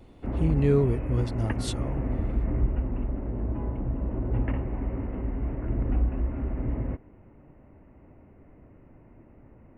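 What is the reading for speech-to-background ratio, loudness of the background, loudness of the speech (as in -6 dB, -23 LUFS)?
3.5 dB, -31.0 LUFS, -27.5 LUFS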